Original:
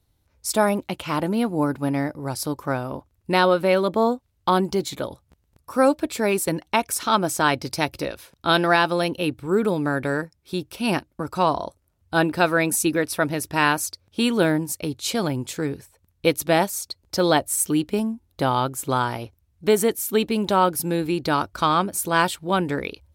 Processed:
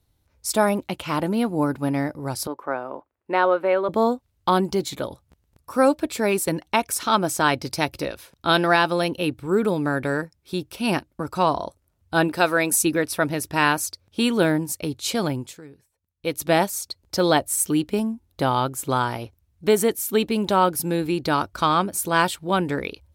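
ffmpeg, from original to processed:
ffmpeg -i in.wav -filter_complex "[0:a]asettb=1/sr,asplit=3[link_01][link_02][link_03];[link_01]atrim=end=2.474[link_04];[link_02]atrim=start=2.47:end=3.89,asetpts=PTS-STARTPTS,afade=type=in:duration=0.004:curve=qsin,afade=type=out:start_time=1.416:duration=0.004:curve=qsin,acrossover=split=300 2400:gain=0.0794 1 0.1[link_05][link_06][link_07];[link_05][link_06][link_07]amix=inputs=3:normalize=0[link_08];[link_03]atrim=start=3.886[link_09];[link_04][link_08]acrossfade=duration=0.004:curve1=hsin:curve2=qsin[link_10];[link_10][link_09]acrossfade=duration=0.004:curve1=qsin:curve2=hsin,asettb=1/sr,asplit=3[link_11][link_12][link_13];[link_11]atrim=end=12.284[link_14];[link_12]atrim=start=12.28:end=12.82,asetpts=PTS-STARTPTS,afade=type=in:duration=0.004:curve=qsin,afade=type=out:start_time=0.536:duration=0.004:curve=qsin,bass=frequency=250:gain=-6,treble=frequency=4000:gain=3[link_15];[link_13]atrim=start=12.816[link_16];[link_14][link_15]acrossfade=duration=0.004:curve1=hsin:curve2=qsin[link_17];[link_17][link_16]acrossfade=duration=0.004:curve1=qsin:curve2=hsin,asplit=3[link_18][link_19][link_20];[link_18]atrim=end=15.61,asetpts=PTS-STARTPTS,afade=type=out:start_time=15.31:duration=0.3:silence=0.133352[link_21];[link_19]atrim=start=15.61:end=16.17,asetpts=PTS-STARTPTS,volume=-17.5dB[link_22];[link_20]atrim=start=16.17,asetpts=PTS-STARTPTS,afade=type=in:duration=0.3:silence=0.133352[link_23];[link_21][link_22][link_23]concat=n=3:v=0:a=1" out.wav

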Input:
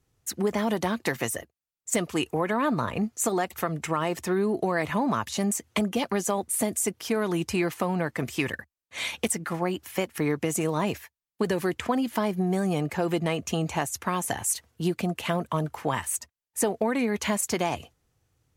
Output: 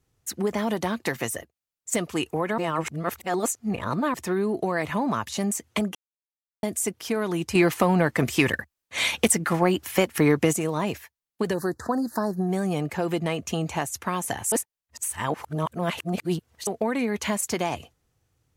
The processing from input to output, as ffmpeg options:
ffmpeg -i in.wav -filter_complex "[0:a]asettb=1/sr,asplit=3[link_01][link_02][link_03];[link_01]atrim=end=7.554[link_04];[link_02]atrim=start=7.55:end=10.53,asetpts=PTS-STARTPTS,afade=type=in:duration=0.004:curve=qsin,afade=type=out:start_time=2.976:duration=0.004:curve=qsin,acontrast=77[link_05];[link_03]atrim=start=10.526[link_06];[link_04][link_05]acrossfade=duration=0.004:curve1=hsin:curve2=qsin[link_07];[link_07][link_06]acrossfade=duration=0.004:curve1=qsin:curve2=hsin,asplit=3[link_08][link_09][link_10];[link_08]afade=type=out:start_time=11.53:duration=0.02[link_11];[link_09]asuperstop=centerf=2700:order=12:qfactor=1.2,afade=type=in:start_time=11.53:duration=0.02,afade=type=out:start_time=12.47:duration=0.02[link_12];[link_10]afade=type=in:start_time=12.47:duration=0.02[link_13];[link_11][link_12][link_13]amix=inputs=3:normalize=0,asplit=7[link_14][link_15][link_16][link_17][link_18][link_19][link_20];[link_14]atrim=end=2.582[link_21];[link_15]atrim=start=2.578:end=4.142,asetpts=PTS-STARTPTS,areverse[link_22];[link_16]atrim=start=4.138:end=5.95,asetpts=PTS-STARTPTS,afade=type=out:start_time=1.808:duration=0.004:curve=hsin[link_23];[link_17]atrim=start=5.95:end=6.63,asetpts=PTS-STARTPTS,volume=0[link_24];[link_18]atrim=start=6.63:end=14.522,asetpts=PTS-STARTPTS,afade=type=in:duration=0.004:curve=hsin[link_25];[link_19]atrim=start=14.518:end=16.672,asetpts=PTS-STARTPTS,areverse[link_26];[link_20]atrim=start=16.668[link_27];[link_21][link_22]acrossfade=duration=0.004:curve1=hsin:curve2=hsin[link_28];[link_23][link_24][link_25]concat=n=3:v=0:a=1[link_29];[link_28][link_29]acrossfade=duration=0.004:curve1=hsin:curve2=hsin[link_30];[link_30][link_26]acrossfade=duration=0.004:curve1=hsin:curve2=hsin[link_31];[link_31][link_27]acrossfade=duration=0.004:curve1=hsin:curve2=hsin" out.wav

